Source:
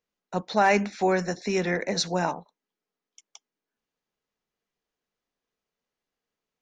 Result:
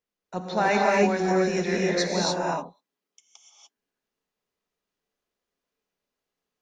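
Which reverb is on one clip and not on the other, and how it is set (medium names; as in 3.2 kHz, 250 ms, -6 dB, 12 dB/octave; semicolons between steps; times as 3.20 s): gated-style reverb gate 320 ms rising, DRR -3.5 dB; trim -3.5 dB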